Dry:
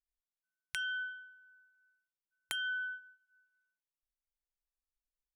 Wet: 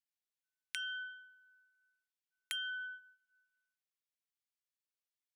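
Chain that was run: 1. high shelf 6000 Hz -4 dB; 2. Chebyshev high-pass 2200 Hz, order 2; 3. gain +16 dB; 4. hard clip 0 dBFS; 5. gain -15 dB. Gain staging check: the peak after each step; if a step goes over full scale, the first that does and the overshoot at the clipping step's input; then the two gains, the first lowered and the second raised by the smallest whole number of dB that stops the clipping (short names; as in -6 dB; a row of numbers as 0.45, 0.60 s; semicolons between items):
-18.0, -18.5, -2.5, -2.5, -17.5 dBFS; no overload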